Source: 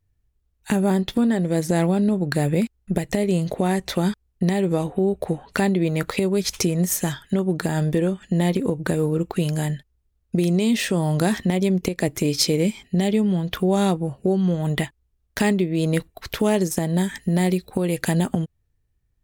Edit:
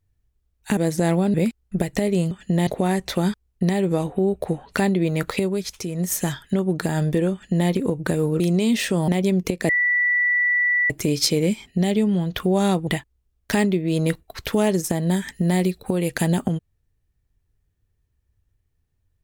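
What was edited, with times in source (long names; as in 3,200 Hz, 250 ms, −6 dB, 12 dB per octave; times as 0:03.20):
0:00.77–0:01.48: remove
0:02.05–0:02.50: remove
0:06.17–0:07.01: duck −10.5 dB, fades 0.41 s
0:08.13–0:08.49: duplicate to 0:03.47
0:09.20–0:10.40: remove
0:11.08–0:11.46: remove
0:12.07: insert tone 1,960 Hz −16.5 dBFS 1.21 s
0:14.04–0:14.74: remove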